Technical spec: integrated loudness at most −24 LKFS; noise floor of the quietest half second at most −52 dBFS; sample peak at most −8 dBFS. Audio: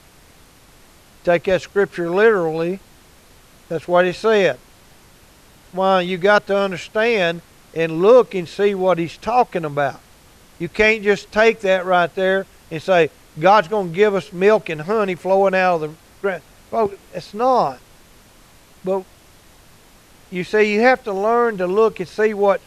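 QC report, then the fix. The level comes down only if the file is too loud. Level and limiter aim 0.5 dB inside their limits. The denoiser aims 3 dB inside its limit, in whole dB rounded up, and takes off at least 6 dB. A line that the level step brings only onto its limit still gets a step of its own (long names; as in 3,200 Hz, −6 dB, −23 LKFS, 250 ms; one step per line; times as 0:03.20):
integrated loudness −18.0 LKFS: out of spec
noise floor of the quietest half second −48 dBFS: out of spec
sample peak −3.0 dBFS: out of spec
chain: level −6.5 dB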